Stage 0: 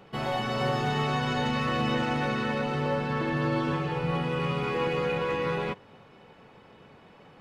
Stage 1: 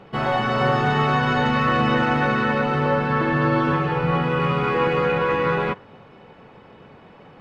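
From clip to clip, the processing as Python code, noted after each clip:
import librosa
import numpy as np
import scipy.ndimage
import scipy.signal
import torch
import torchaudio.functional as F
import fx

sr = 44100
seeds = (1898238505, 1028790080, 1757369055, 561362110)

y = fx.lowpass(x, sr, hz=2600.0, slope=6)
y = fx.dynamic_eq(y, sr, hz=1400.0, q=1.5, threshold_db=-46.0, ratio=4.0, max_db=6)
y = F.gain(torch.from_numpy(y), 7.0).numpy()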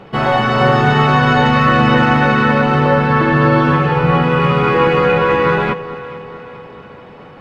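y = fx.echo_alternate(x, sr, ms=217, hz=870.0, feedback_pct=73, wet_db=-14)
y = F.gain(torch.from_numpy(y), 7.5).numpy()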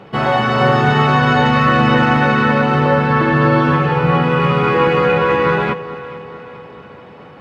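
y = scipy.signal.sosfilt(scipy.signal.butter(2, 58.0, 'highpass', fs=sr, output='sos'), x)
y = F.gain(torch.from_numpy(y), -1.0).numpy()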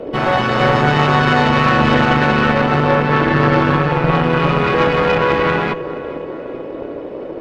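y = fx.dmg_noise_band(x, sr, seeds[0], low_hz=270.0, high_hz=590.0, level_db=-26.0)
y = fx.cheby_harmonics(y, sr, harmonics=(4,), levels_db=(-13,), full_scale_db=-1.0)
y = F.gain(torch.from_numpy(y), -1.5).numpy()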